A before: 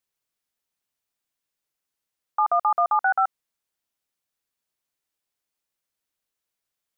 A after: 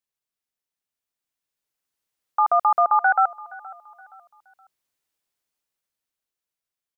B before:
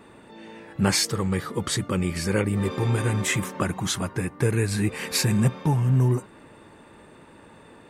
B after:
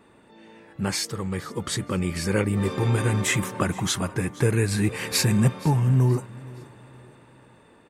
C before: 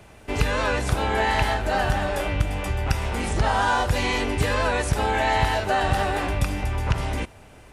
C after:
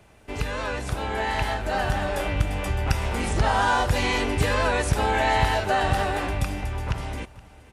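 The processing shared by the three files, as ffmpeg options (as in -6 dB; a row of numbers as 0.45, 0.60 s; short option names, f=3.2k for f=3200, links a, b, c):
-af "dynaudnorm=f=390:g=9:m=10dB,aecho=1:1:471|942|1413:0.0891|0.033|0.0122,volume=-6dB"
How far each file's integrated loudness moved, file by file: +2.5, 0.0, -1.0 LU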